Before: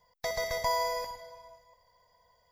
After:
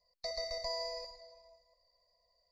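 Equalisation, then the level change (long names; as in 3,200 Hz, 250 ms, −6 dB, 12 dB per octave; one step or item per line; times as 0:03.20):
low-pass with resonance 4,300 Hz, resonance Q 11
phaser with its sweep stopped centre 410 Hz, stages 6
phaser with its sweep stopped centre 890 Hz, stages 6
−4.5 dB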